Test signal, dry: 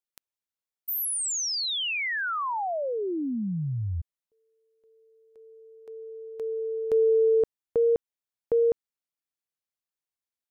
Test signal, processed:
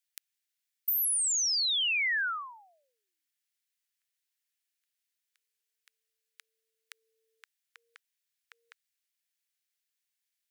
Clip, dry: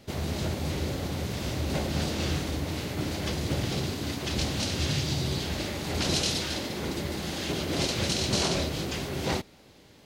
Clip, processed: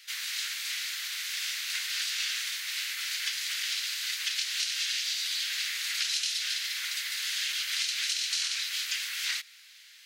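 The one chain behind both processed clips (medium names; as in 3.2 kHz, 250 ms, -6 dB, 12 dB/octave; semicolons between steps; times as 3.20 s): steep high-pass 1.6 kHz 36 dB/octave; compression 6:1, threshold -35 dBFS; trim +7.5 dB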